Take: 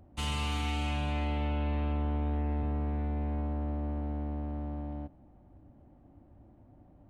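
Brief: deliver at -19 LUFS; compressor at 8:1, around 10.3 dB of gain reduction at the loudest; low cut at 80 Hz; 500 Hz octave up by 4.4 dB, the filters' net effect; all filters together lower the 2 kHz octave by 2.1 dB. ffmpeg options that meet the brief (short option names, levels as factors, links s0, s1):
-af "highpass=80,equalizer=f=500:t=o:g=5.5,equalizer=f=2000:t=o:g=-3,acompressor=threshold=0.0112:ratio=8,volume=16.8"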